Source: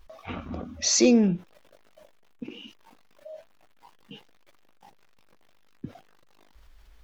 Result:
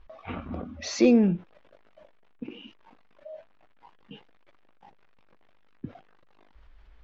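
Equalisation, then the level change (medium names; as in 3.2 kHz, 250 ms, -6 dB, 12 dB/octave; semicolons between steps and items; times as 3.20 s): low-pass 2.8 kHz 12 dB/octave; 0.0 dB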